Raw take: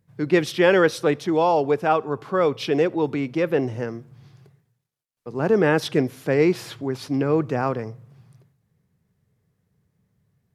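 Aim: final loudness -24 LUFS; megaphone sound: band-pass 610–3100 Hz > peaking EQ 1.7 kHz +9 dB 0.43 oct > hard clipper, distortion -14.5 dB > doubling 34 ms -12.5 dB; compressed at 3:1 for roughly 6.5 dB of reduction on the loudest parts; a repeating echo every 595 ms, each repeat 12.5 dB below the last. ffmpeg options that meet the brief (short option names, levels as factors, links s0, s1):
-filter_complex "[0:a]acompressor=threshold=0.0891:ratio=3,highpass=610,lowpass=3100,equalizer=f=1700:t=o:w=0.43:g=9,aecho=1:1:595|1190|1785:0.237|0.0569|0.0137,asoftclip=type=hard:threshold=0.0891,asplit=2[s0][s1];[s1]adelay=34,volume=0.237[s2];[s0][s2]amix=inputs=2:normalize=0,volume=2"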